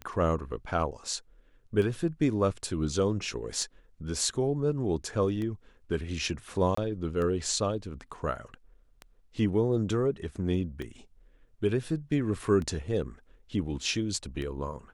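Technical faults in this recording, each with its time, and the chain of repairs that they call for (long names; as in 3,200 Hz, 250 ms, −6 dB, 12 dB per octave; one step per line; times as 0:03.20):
scratch tick 33 1/3 rpm −24 dBFS
0:06.75–0:06.77: drop-out 24 ms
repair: click removal
repair the gap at 0:06.75, 24 ms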